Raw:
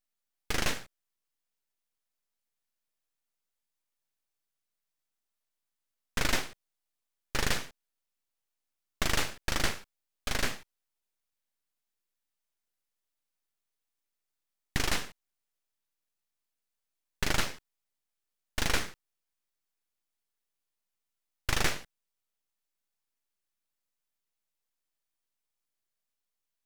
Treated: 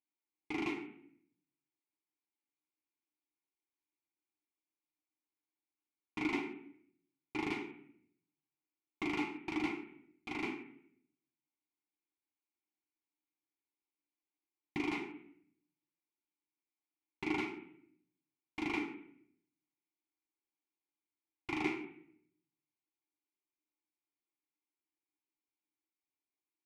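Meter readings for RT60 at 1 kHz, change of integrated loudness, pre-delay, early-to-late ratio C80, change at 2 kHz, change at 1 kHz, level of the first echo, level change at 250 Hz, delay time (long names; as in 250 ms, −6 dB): 0.60 s, −7.0 dB, 3 ms, 11.0 dB, −7.5 dB, −6.0 dB, no echo audible, +3.5 dB, no echo audible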